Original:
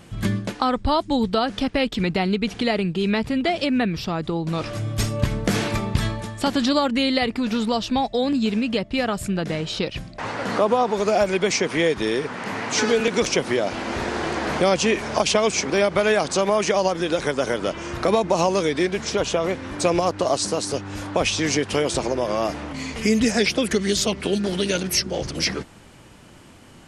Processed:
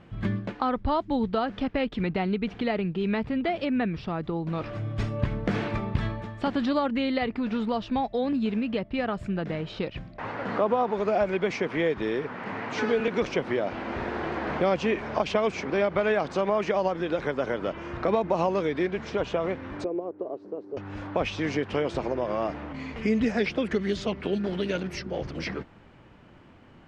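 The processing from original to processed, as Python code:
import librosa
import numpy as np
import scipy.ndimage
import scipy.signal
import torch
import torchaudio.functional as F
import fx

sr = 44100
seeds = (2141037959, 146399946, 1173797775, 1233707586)

y = fx.bandpass_q(x, sr, hz=390.0, q=3.1, at=(19.84, 20.77))
y = scipy.signal.sosfilt(scipy.signal.butter(2, 2400.0, 'lowpass', fs=sr, output='sos'), y)
y = y * librosa.db_to_amplitude(-5.0)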